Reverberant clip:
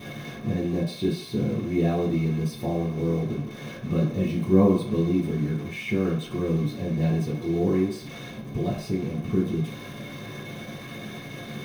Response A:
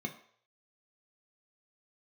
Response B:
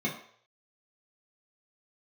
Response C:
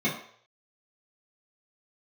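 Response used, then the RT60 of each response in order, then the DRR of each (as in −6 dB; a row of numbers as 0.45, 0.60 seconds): C; 0.60, 0.60, 0.60 seconds; 2.5, −5.5, −9.5 decibels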